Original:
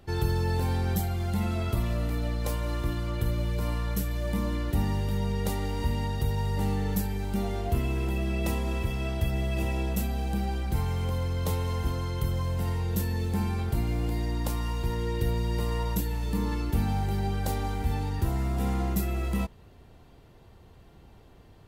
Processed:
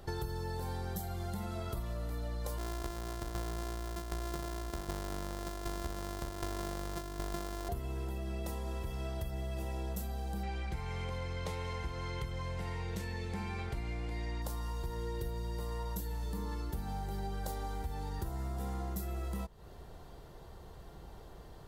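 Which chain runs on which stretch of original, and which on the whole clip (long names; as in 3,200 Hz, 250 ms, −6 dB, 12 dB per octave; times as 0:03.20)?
0:02.58–0:07.69: samples sorted by size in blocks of 128 samples + shaped tremolo saw down 1.3 Hz, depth 80%
0:10.43–0:14.42: low-pass filter 7,300 Hz + parametric band 2,300 Hz +14.5 dB 0.62 octaves
whole clip: graphic EQ with 15 bands 100 Hz −8 dB, 250 Hz −8 dB, 2,500 Hz −9 dB; downward compressor, threshold −41 dBFS; level +5 dB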